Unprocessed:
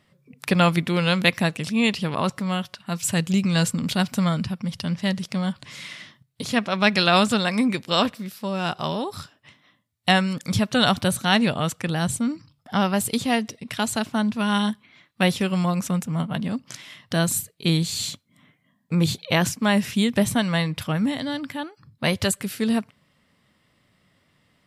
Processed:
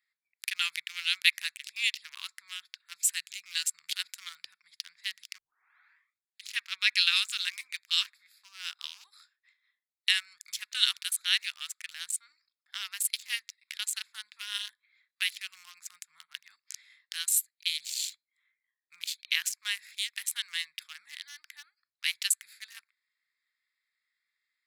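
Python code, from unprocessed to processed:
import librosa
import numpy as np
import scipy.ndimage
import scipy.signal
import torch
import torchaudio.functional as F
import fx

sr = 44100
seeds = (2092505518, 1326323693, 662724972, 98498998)

y = fx.edit(x, sr, fx.tape_start(start_s=5.38, length_s=1.12), tone=tone)
y = fx.wiener(y, sr, points=15)
y = scipy.signal.sosfilt(scipy.signal.cheby2(4, 60, 620.0, 'highpass', fs=sr, output='sos'), y)
y = fx.high_shelf(y, sr, hz=9700.0, db=7.0)
y = F.gain(torch.from_numpy(y), -1.5).numpy()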